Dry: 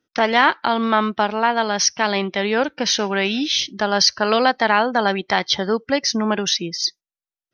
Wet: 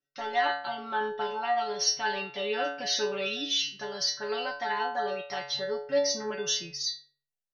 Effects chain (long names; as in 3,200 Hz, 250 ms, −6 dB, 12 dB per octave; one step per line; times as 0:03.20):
comb filter 5.4 ms, depth 72%
automatic gain control
stiff-string resonator 140 Hz, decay 0.63 s, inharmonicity 0.002